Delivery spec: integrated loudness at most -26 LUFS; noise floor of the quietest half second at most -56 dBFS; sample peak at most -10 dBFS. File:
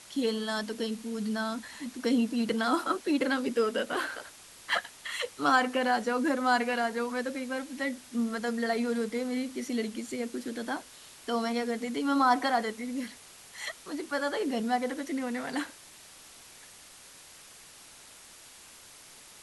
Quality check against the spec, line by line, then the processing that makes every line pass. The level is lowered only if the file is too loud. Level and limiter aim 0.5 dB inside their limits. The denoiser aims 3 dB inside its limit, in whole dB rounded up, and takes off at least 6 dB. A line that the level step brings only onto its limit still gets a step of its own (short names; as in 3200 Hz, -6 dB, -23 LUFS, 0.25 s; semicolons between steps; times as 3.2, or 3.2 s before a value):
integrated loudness -30.5 LUFS: OK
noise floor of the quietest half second -52 dBFS: fail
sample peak -11.5 dBFS: OK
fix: denoiser 7 dB, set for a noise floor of -52 dBFS